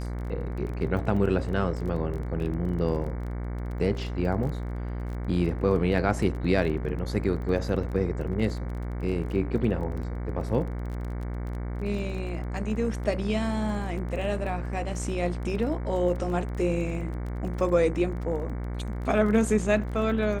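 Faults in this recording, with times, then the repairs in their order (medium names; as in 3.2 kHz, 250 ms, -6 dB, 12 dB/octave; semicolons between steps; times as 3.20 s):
buzz 60 Hz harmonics 38 -32 dBFS
crackle 21 per s -35 dBFS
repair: de-click; de-hum 60 Hz, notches 38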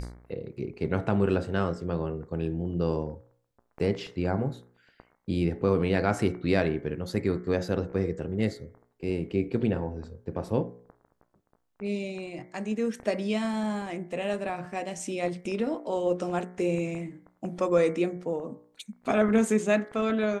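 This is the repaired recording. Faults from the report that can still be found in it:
nothing left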